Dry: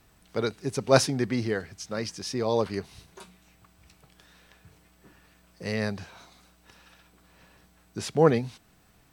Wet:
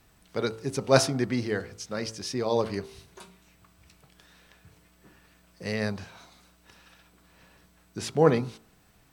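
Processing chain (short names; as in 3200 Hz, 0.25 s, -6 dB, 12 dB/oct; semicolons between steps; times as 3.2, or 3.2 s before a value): de-hum 55.76 Hz, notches 26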